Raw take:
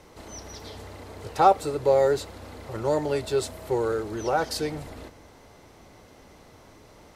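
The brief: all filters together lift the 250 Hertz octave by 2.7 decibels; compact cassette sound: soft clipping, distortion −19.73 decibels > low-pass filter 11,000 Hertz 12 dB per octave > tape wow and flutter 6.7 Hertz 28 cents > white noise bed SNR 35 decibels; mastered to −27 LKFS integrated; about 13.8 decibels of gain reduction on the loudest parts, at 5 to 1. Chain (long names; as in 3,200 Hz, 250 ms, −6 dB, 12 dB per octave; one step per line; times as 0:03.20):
parametric band 250 Hz +4 dB
downward compressor 5 to 1, threshold −27 dBFS
soft clipping −21.5 dBFS
low-pass filter 11,000 Hz 12 dB per octave
tape wow and flutter 6.7 Hz 28 cents
white noise bed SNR 35 dB
level +7.5 dB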